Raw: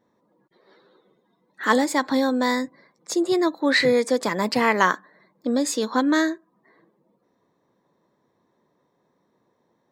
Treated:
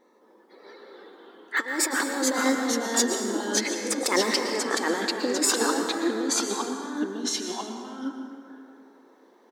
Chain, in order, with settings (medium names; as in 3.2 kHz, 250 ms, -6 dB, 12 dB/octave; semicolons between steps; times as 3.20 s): comb 2.4 ms, depth 42%; compressor with a negative ratio -27 dBFS, ratio -0.5; ever faster or slower copies 220 ms, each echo -2 st, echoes 2; brick-wall FIR high-pass 190 Hz; plate-style reverb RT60 2.4 s, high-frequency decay 0.55×, pre-delay 105 ms, DRR 4.5 dB; speed mistake 24 fps film run at 25 fps